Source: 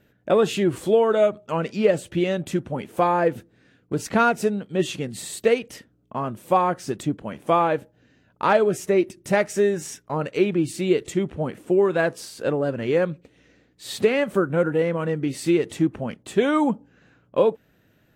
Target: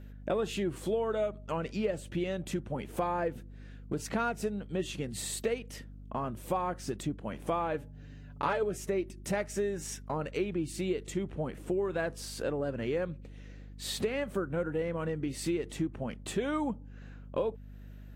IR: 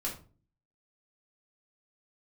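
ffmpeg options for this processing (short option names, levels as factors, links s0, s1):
-filter_complex "[0:a]acompressor=threshold=0.0178:ratio=2.5,aeval=exprs='val(0)+0.00501*(sin(2*PI*50*n/s)+sin(2*PI*2*50*n/s)/2+sin(2*PI*3*50*n/s)/3+sin(2*PI*4*50*n/s)/4+sin(2*PI*5*50*n/s)/5)':c=same,asettb=1/sr,asplit=3[s0][s1][s2];[s0]atrim=end=7.734[s3];[s1]atrim=start=7.73:end=8.63,asetpts=PTS-STARTPTS,afade=t=in:d=0.004:c=qsin,afade=t=out:st=0.896:d=0.004:c=qsin,aecho=1:1:7:0.69,atrim=end_sample=39690[s4];[s2]atrim=start=8.626[s5];[s3][s4]acrossfade=d=0.004:c1=hsin:c2=qsin[s6];[s6][s5]acrossfade=d=0.004:c1=qsin:c2=hsin"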